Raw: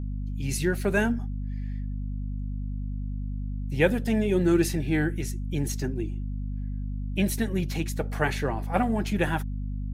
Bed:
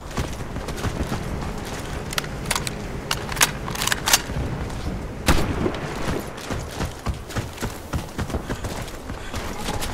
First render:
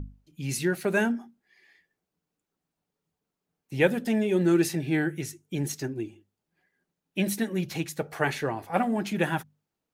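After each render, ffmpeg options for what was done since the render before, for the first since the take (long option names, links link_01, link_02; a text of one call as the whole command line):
ffmpeg -i in.wav -af "bandreject=frequency=50:width_type=h:width=6,bandreject=frequency=100:width_type=h:width=6,bandreject=frequency=150:width_type=h:width=6,bandreject=frequency=200:width_type=h:width=6,bandreject=frequency=250:width_type=h:width=6" out.wav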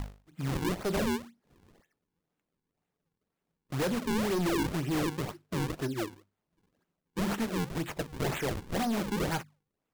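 ffmpeg -i in.wav -af "acrusher=samples=40:mix=1:aa=0.000001:lfo=1:lforange=64:lforate=2,asoftclip=type=hard:threshold=-27dB" out.wav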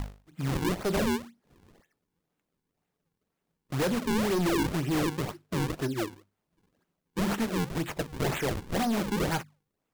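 ffmpeg -i in.wav -af "volume=2.5dB" out.wav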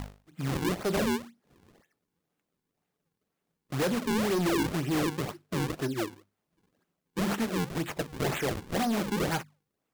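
ffmpeg -i in.wav -af "lowshelf=frequency=62:gain=-9.5,bandreject=frequency=940:width=28" out.wav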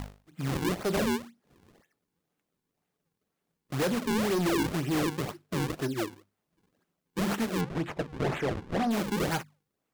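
ffmpeg -i in.wav -filter_complex "[0:a]asettb=1/sr,asplit=3[link_01][link_02][link_03];[link_01]atrim=end=7.614[link_04];[link_02]atrim=start=7.61:end=8.91,asetpts=PTS-STARTPTS,afade=type=in:duration=0.004:curve=qsin,afade=type=out:start_time=1.296:duration=0.004:curve=qsin,aemphasis=mode=reproduction:type=75fm[link_05];[link_03]atrim=start=8.906[link_06];[link_04][link_05]acrossfade=duration=0.004:curve1=hsin:curve2=qsin[link_07];[link_07][link_06]acrossfade=duration=0.004:curve1=qsin:curve2=hsin" out.wav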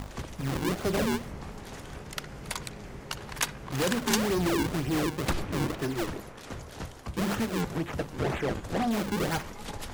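ffmpeg -i in.wav -i bed.wav -filter_complex "[1:a]volume=-12dB[link_01];[0:a][link_01]amix=inputs=2:normalize=0" out.wav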